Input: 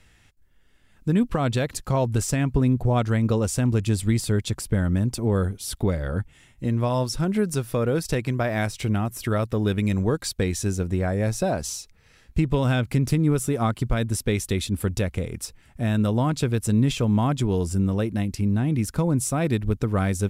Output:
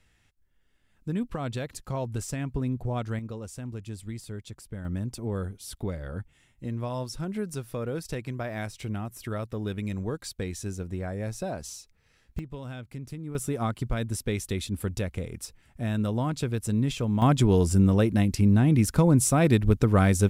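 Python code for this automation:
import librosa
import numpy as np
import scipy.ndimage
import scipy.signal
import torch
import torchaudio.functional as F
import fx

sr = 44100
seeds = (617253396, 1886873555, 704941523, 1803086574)

y = fx.gain(x, sr, db=fx.steps((0.0, -9.0), (3.19, -15.5), (4.85, -9.0), (12.39, -17.0), (13.35, -5.5), (17.22, 2.5)))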